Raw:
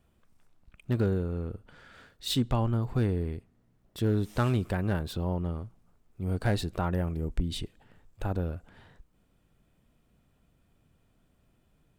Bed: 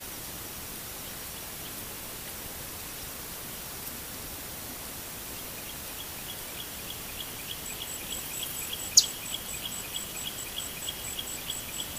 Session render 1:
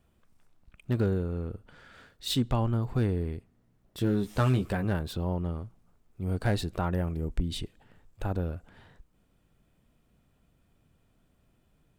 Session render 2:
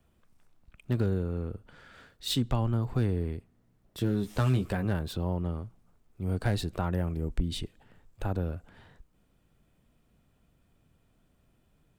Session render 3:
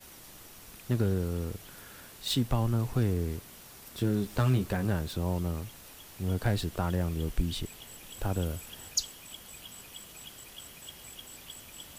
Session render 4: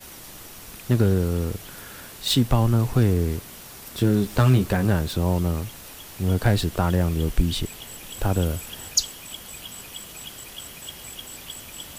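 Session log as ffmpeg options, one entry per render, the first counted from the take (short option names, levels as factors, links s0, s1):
-filter_complex "[0:a]asettb=1/sr,asplit=3[s0][s1][s2];[s0]atrim=end=3.994[s3];[s1]atrim=start=3.99:end=4.85,asetpts=PTS-STARTPTS,afade=t=in:d=0.004:c=qsin,afade=t=out:st=0.856:d=0.004:c=qsin,asplit=2[s4][s5];[s5]adelay=15,volume=0.531[s6];[s4][s6]amix=inputs=2:normalize=0,atrim=end_sample=37926[s7];[s2]atrim=start=4.846[s8];[s3][s7]acrossfade=d=0.004:c1=hsin:c2=qsin[s9];[s9][s8]acrossfade=d=0.004:c1=qsin:c2=hsin"
-filter_complex "[0:a]acrossover=split=190|3000[s0][s1][s2];[s1]acompressor=threshold=0.0398:ratio=6[s3];[s0][s3][s2]amix=inputs=3:normalize=0"
-filter_complex "[1:a]volume=0.282[s0];[0:a][s0]amix=inputs=2:normalize=0"
-af "volume=2.66"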